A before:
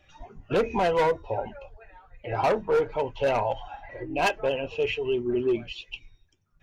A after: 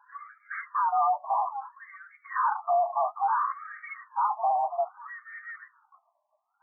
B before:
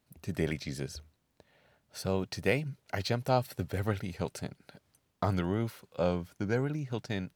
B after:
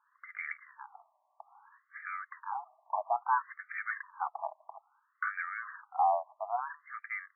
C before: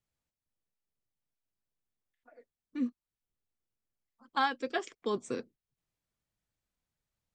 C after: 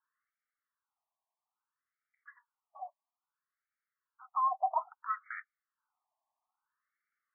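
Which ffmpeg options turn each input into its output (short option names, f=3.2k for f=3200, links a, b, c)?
-filter_complex "[0:a]highpass=f=380:t=q:w=0.5412,highpass=f=380:t=q:w=1.307,lowpass=f=2.3k:t=q:w=0.5176,lowpass=f=2.3k:t=q:w=0.7071,lowpass=f=2.3k:t=q:w=1.932,afreqshift=240,asplit=2[a][b];[b]highpass=f=720:p=1,volume=24dB,asoftclip=type=tanh:threshold=-13dB[c];[a][c]amix=inputs=2:normalize=0,lowpass=f=1.5k:p=1,volume=-6dB,afftfilt=real='re*between(b*sr/1024,820*pow(1700/820,0.5+0.5*sin(2*PI*0.6*pts/sr))/1.41,820*pow(1700/820,0.5+0.5*sin(2*PI*0.6*pts/sr))*1.41)':imag='im*between(b*sr/1024,820*pow(1700/820,0.5+0.5*sin(2*PI*0.6*pts/sr))/1.41,820*pow(1700/820,0.5+0.5*sin(2*PI*0.6*pts/sr))*1.41)':win_size=1024:overlap=0.75,volume=-3.5dB"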